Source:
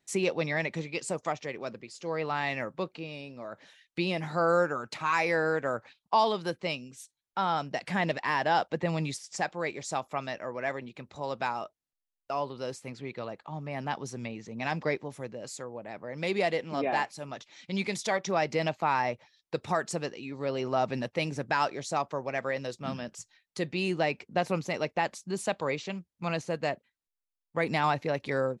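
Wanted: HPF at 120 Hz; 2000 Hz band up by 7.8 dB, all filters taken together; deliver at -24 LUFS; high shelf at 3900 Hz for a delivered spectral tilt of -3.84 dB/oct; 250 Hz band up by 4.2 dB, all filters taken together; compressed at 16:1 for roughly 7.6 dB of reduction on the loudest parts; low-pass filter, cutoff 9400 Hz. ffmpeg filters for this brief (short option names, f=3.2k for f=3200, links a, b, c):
-af "highpass=120,lowpass=9.4k,equalizer=f=250:t=o:g=6.5,equalizer=f=2k:t=o:g=7.5,highshelf=f=3.9k:g=8,acompressor=threshold=-25dB:ratio=16,volume=8dB"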